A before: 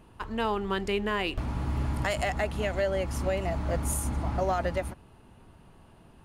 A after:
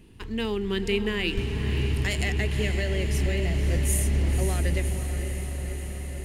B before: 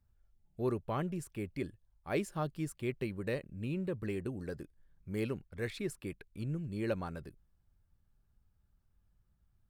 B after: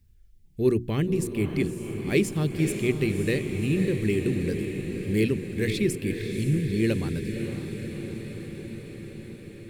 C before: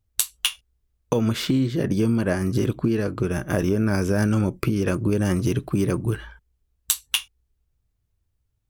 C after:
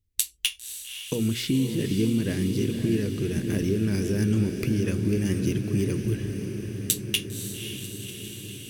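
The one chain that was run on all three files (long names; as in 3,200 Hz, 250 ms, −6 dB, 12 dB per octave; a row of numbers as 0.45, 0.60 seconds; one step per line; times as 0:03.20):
flat-topped bell 900 Hz −14.5 dB
mains-hum notches 60/120/180/240/300/360 Hz
on a send: feedback delay with all-pass diffusion 543 ms, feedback 73%, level −8 dB
on the sum: loudness normalisation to −27 LKFS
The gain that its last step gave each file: +4.5, +13.0, −2.5 decibels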